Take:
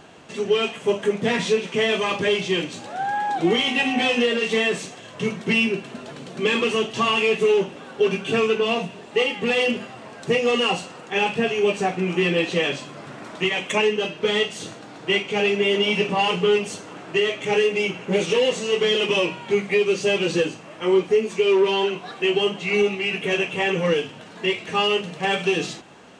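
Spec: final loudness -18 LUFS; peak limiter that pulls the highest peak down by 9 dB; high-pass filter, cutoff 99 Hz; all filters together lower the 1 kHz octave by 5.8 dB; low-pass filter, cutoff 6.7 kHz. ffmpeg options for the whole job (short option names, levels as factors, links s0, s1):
-af "highpass=99,lowpass=6700,equalizer=f=1000:t=o:g=-8,volume=3.35,alimiter=limit=0.355:level=0:latency=1"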